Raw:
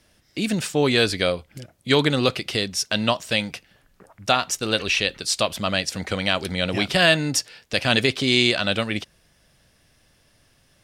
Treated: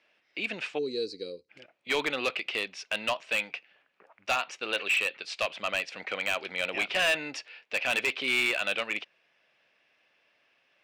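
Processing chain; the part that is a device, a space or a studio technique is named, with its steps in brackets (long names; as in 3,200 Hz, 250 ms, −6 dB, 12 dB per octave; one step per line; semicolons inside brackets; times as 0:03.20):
gain on a spectral selection 0:00.78–0:01.49, 530–3,800 Hz −29 dB
megaphone (band-pass filter 490–3,400 Hz; parametric band 2,500 Hz +10 dB 0.49 octaves; hard clipping −15 dBFS, distortion −8 dB)
high-shelf EQ 5,100 Hz −6 dB
level −5.5 dB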